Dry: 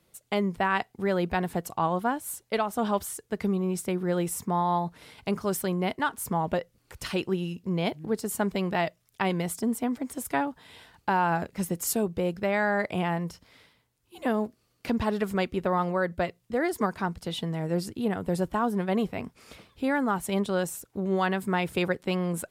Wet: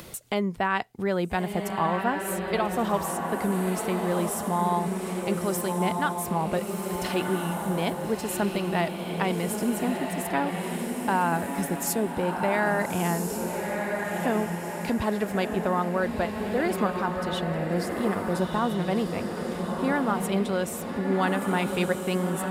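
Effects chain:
feedback delay with all-pass diffusion 1,340 ms, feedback 44%, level −3.5 dB
upward compression, threshold −27 dBFS

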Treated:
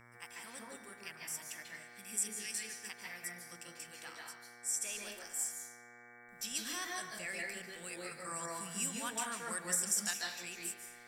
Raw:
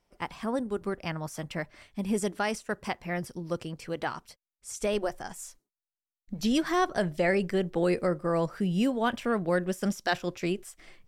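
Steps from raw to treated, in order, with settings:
0:01.76–0:02.81: time-frequency box erased 470–1,700 Hz
first-order pre-emphasis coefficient 0.97
harmonic and percussive parts rebalanced harmonic +3 dB
0:08.11–0:10.11: octave-band graphic EQ 125/250/1,000/8,000 Hz +8/+3/+8/+10 dB
hum with harmonics 120 Hz, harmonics 19, −56 dBFS −2 dB per octave
convolution reverb RT60 1.0 s, pre-delay 138 ms, DRR 0 dB

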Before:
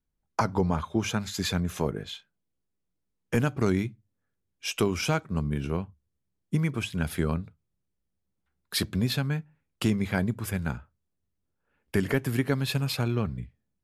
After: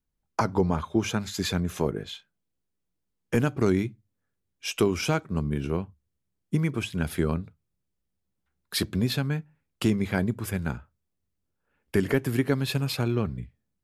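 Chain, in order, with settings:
dynamic equaliser 350 Hz, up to +4 dB, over −41 dBFS, Q 1.6

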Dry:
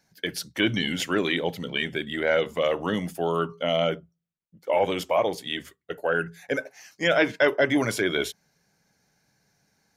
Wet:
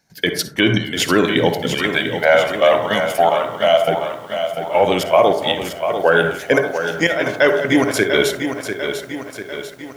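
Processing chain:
0:01.81–0:03.88: low shelf with overshoot 500 Hz −9 dB, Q 3
speech leveller within 4 dB 0.5 s
gate pattern ".xx.x.xx..xxx" 155 BPM −12 dB
convolution reverb RT60 0.55 s, pre-delay 47 ms, DRR 8.5 dB
boost into a limiter +12.5 dB
feedback echo at a low word length 695 ms, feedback 55%, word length 7 bits, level −8 dB
level −2 dB

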